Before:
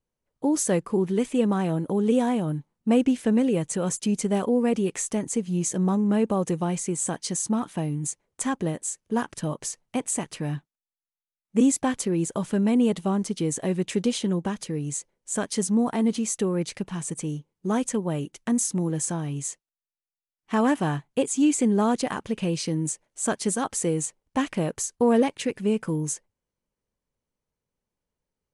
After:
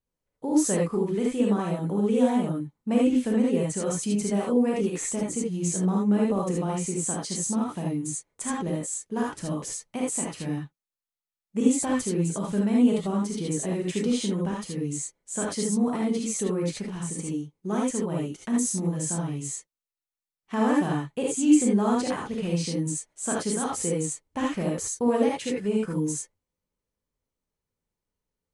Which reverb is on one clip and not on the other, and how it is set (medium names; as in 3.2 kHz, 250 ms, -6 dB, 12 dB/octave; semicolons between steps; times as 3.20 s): gated-style reverb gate 100 ms rising, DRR -2.5 dB; trim -6 dB